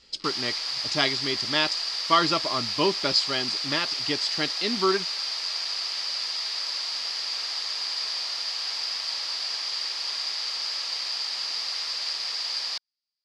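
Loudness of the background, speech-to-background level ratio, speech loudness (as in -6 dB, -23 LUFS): -27.5 LUFS, 1.0 dB, -26.5 LUFS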